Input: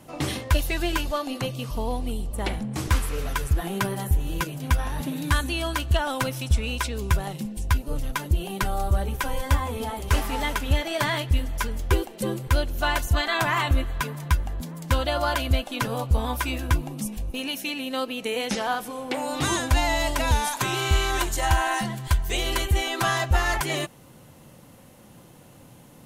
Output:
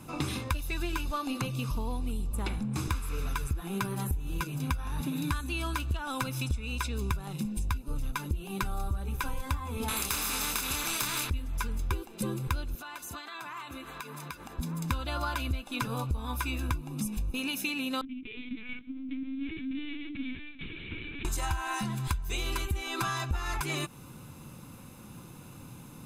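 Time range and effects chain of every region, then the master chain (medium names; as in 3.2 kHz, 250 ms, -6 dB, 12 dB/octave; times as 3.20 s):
9.88–11.30 s: doubling 27 ms -3.5 dB + spectrum-flattening compressor 4:1
12.75–14.59 s: high-pass 300 Hz + compression 12:1, threshold -38 dBFS
18.01–21.25 s: self-modulated delay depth 0.39 ms + vowel filter i + LPC vocoder at 8 kHz pitch kept
whole clip: comb 0.8 ms, depth 56%; compression 6:1, threshold -29 dBFS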